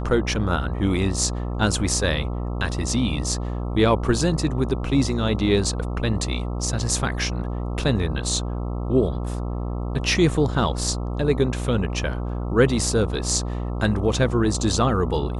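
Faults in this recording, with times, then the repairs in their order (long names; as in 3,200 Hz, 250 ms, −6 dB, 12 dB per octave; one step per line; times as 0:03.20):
mains buzz 60 Hz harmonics 22 −27 dBFS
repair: hum removal 60 Hz, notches 22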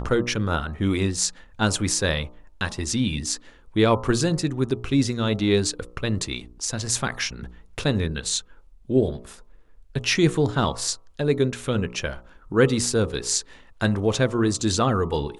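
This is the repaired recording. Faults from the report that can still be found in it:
none of them is left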